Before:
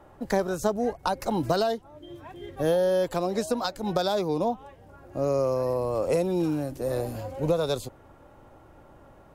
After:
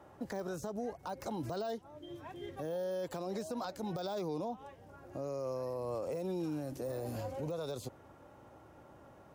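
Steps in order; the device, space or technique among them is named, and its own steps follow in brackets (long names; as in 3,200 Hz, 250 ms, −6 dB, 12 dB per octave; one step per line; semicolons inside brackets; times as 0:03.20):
broadcast voice chain (high-pass filter 80 Hz; de-essing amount 95%; downward compressor, threshold −26 dBFS, peak gain reduction 7 dB; parametric band 5,800 Hz +3.5 dB 0.48 octaves; brickwall limiter −26.5 dBFS, peak gain reduction 11 dB)
level −4 dB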